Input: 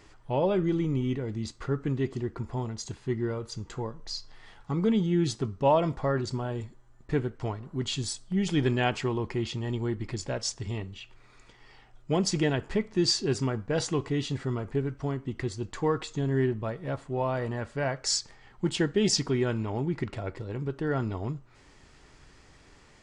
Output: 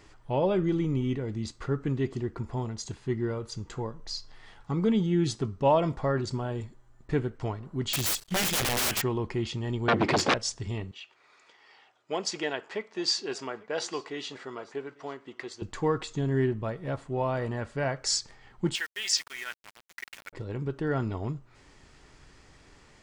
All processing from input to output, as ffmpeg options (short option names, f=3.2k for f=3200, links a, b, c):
-filter_complex "[0:a]asettb=1/sr,asplit=3[a][b][c];[a]atrim=end=7.934[d];[b]atrim=start=7.93:end=9.02,asetpts=PTS-STARTPTS,afade=t=in:d=0.004:c=qsin,afade=t=out:st=1.086:d=0.004:c=qsin,highshelf=f=1.5k:t=q:w=1.5:g=10,aeval=exprs='(mod(12.6*val(0)+1,2)-1)/12.6':c=same,acrusher=bits=6:mix=0:aa=0.5[e];[c]atrim=start=9.016[f];[d][e]acrossfade=d=0.004:c1=hsin:c2=qsin[g];[g][f]acrossfade=d=0.004:c1=qsin:c2=hsin,asettb=1/sr,asplit=3[h][i][j];[h]atrim=end=9.884[k];[i]atrim=start=9.88:end=10.34,asetpts=PTS-STARTPTS,afade=t=in:d=0.004:c=qsin,afade=t=out:st=0.456:d=0.004:c=qsin,equalizer=f=530:t=o:w=1.4:g=4.5,aeval=exprs='0.133*sin(PI/2*5.62*val(0)/0.133)':c=same,highpass=190,lowpass=5k[l];[j]atrim=start=10.336[m];[k][l]acrossfade=d=0.004:c1=hsin:c2=qsin[n];[n][m]acrossfade=d=0.004:c1=qsin:c2=hsin,asettb=1/sr,asplit=3[o][p][q];[o]atrim=end=10.914[r];[p]atrim=start=10.91:end=15.62,asetpts=PTS-STARTPTS,afade=t=in:d=0.004:c=qsin,afade=t=out:st=4.706:d=0.004:c=qsin,highpass=500,lowpass=6.7k,aecho=1:1:849:0.0708,atrim=end_sample=207711[s];[q]atrim=start=15.616[t];[r][s]acrossfade=d=0.004:c1=hsin:c2=qsin[u];[u][t]acrossfade=d=0.004:c1=qsin:c2=hsin,asettb=1/sr,asplit=3[v][w][x];[v]atrim=end=18.754[y];[w]atrim=start=18.75:end=20.33,asetpts=PTS-STARTPTS,afade=t=in:d=0.004:c=qsin,afade=t=out:st=1.576:d=0.004:c=qsin,highpass=f=1.8k:t=q:w=1.6,aeval=exprs='val(0)*gte(abs(val(0)),0.00891)':c=same[z];[x]atrim=start=20.326[aa];[y][z]acrossfade=d=0.004:c1=hsin:c2=qsin[ab];[ab][aa]acrossfade=d=0.004:c1=qsin:c2=hsin"